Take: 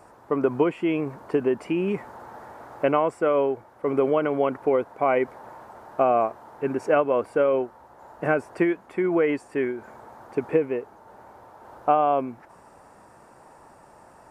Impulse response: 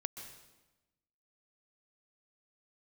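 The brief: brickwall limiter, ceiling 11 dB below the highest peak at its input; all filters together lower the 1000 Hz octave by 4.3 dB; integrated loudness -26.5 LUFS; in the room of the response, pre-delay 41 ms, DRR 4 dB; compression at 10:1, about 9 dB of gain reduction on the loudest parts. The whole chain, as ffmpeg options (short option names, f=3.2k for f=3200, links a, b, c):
-filter_complex "[0:a]equalizer=f=1k:t=o:g=-6.5,acompressor=threshold=-26dB:ratio=10,alimiter=level_in=1.5dB:limit=-24dB:level=0:latency=1,volume=-1.5dB,asplit=2[a][b];[1:a]atrim=start_sample=2205,adelay=41[c];[b][c]afir=irnorm=-1:irlink=0,volume=-3dB[d];[a][d]amix=inputs=2:normalize=0,volume=8.5dB"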